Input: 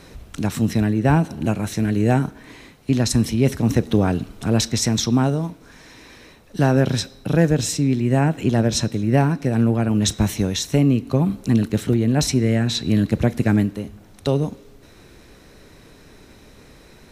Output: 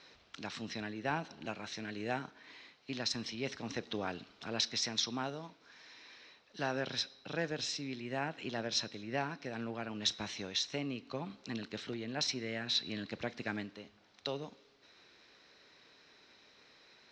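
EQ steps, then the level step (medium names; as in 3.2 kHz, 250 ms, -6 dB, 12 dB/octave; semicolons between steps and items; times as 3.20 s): high-pass 1.3 kHz 6 dB/octave; four-pole ladder low-pass 5.9 kHz, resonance 40%; distance through air 91 m; 0.0 dB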